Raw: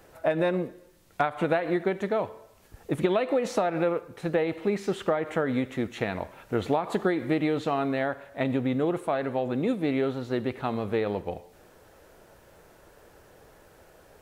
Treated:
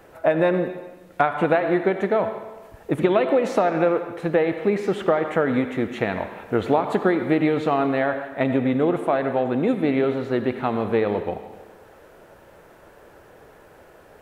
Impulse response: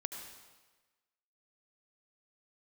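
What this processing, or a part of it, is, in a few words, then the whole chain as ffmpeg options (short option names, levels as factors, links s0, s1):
filtered reverb send: -filter_complex "[0:a]asplit=2[s0][s1];[s1]highpass=f=170:p=1,lowpass=3300[s2];[1:a]atrim=start_sample=2205[s3];[s2][s3]afir=irnorm=-1:irlink=0,volume=1.33[s4];[s0][s4]amix=inputs=2:normalize=0"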